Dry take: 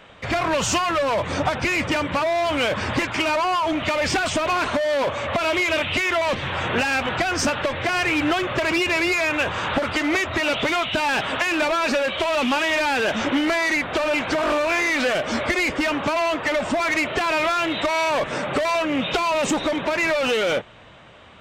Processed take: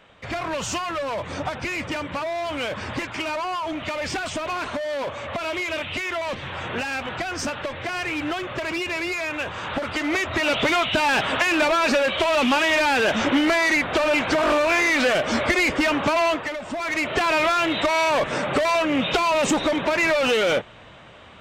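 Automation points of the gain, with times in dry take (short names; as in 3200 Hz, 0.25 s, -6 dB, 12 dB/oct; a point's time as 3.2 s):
9.58 s -6 dB
10.66 s +1.5 dB
16.3 s +1.5 dB
16.58 s -10 dB
17.18 s +1 dB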